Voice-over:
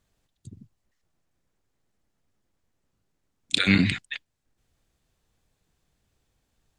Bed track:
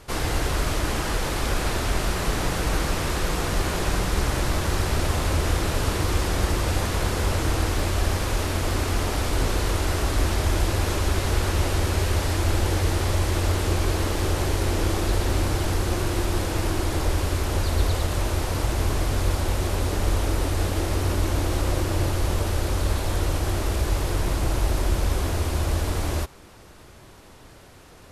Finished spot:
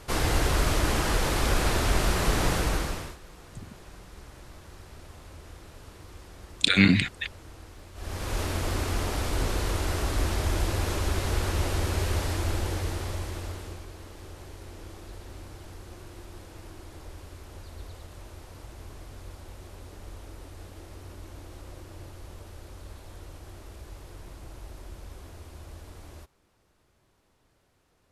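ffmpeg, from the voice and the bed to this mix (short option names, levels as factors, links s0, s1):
-filter_complex "[0:a]adelay=3100,volume=1.12[s0];[1:a]volume=8.91,afade=t=out:st=2.51:d=0.66:silence=0.0668344,afade=t=in:st=7.94:d=0.46:silence=0.112202,afade=t=out:st=12.16:d=1.71:silence=0.158489[s1];[s0][s1]amix=inputs=2:normalize=0"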